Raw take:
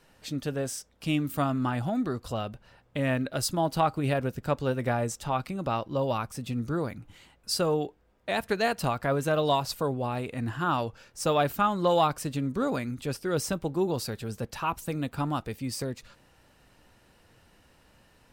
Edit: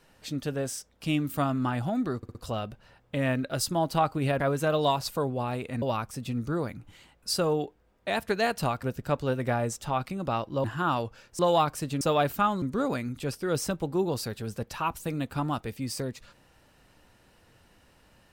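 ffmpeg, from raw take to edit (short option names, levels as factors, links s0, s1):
-filter_complex "[0:a]asplit=11[s0][s1][s2][s3][s4][s5][s6][s7][s8][s9][s10];[s0]atrim=end=2.232[s11];[s1]atrim=start=2.168:end=2.232[s12];[s2]atrim=start=2.168:end=2.232[s13];[s3]atrim=start=2.168:end=4.222[s14];[s4]atrim=start=9.038:end=10.462[s15];[s5]atrim=start=6.028:end=9.042[s16];[s6]atrim=start=4.218:end=6.032[s17];[s7]atrim=start=10.458:end=11.212[s18];[s8]atrim=start=11.818:end=12.442[s19];[s9]atrim=start=11.208:end=11.822[s20];[s10]atrim=start=12.438[s21];[s11][s12]acrossfade=d=0.004:c1=hsin:c2=hsin[s22];[s22][s13]acrossfade=d=0.004:c1=hsin:c2=hsin[s23];[s23][s14]acrossfade=d=0.004:c1=hsin:c2=hsin[s24];[s24][s15]acrossfade=d=0.004:c1=hsin:c2=hsin[s25];[s25][s16]acrossfade=d=0.004:c1=hsin:c2=hsin[s26];[s26][s17]acrossfade=d=0.004:c1=hsin:c2=hsin[s27];[s27][s18]acrossfade=d=0.004:c1=hsin:c2=hsin[s28];[s28][s19]acrossfade=d=0.004:c1=hsin:c2=hsin[s29];[s29][s20]acrossfade=d=0.004:c1=hsin:c2=hsin[s30];[s30][s21]acrossfade=d=0.004:c1=hsin:c2=hsin"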